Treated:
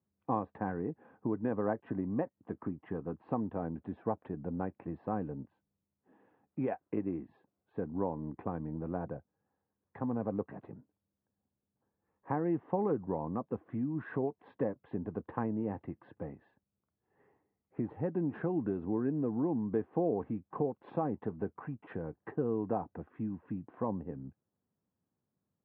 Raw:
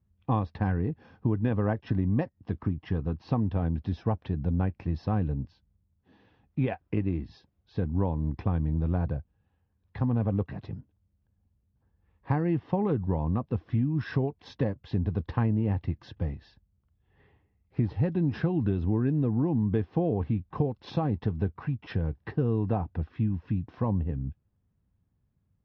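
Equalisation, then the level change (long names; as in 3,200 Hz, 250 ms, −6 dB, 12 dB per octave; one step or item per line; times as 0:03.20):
high-pass filter 290 Hz 12 dB per octave
low-pass filter 1,600 Hz 12 dB per octave
high-frequency loss of the air 430 metres
0.0 dB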